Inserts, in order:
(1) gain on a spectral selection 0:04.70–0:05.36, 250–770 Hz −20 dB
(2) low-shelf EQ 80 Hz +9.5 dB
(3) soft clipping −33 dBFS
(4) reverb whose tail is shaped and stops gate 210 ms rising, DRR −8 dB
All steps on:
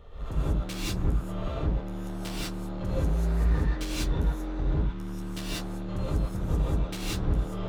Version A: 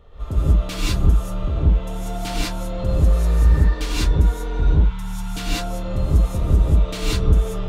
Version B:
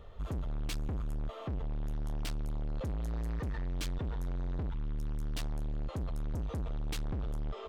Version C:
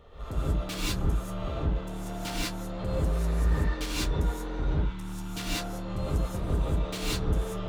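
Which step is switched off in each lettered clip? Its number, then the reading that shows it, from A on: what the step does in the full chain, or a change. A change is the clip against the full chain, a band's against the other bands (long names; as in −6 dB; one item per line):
3, distortion level −10 dB
4, change in momentary loudness spread −6 LU
2, 250 Hz band −3.5 dB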